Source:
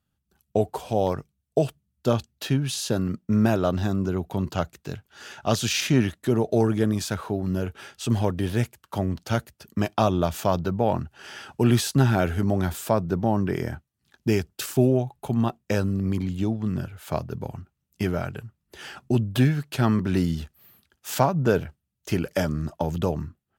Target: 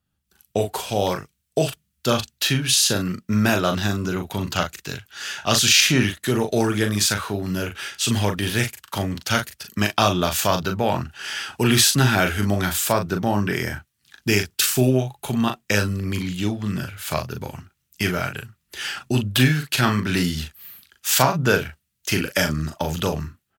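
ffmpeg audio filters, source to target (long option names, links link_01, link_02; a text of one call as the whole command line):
ffmpeg -i in.wav -filter_complex "[0:a]acrossover=split=810|1300[link_01][link_02][link_03];[link_03]dynaudnorm=framelen=170:gausssize=3:maxgain=12.5dB[link_04];[link_01][link_02][link_04]amix=inputs=3:normalize=0,asplit=2[link_05][link_06];[link_06]adelay=39,volume=-6.5dB[link_07];[link_05][link_07]amix=inputs=2:normalize=0" out.wav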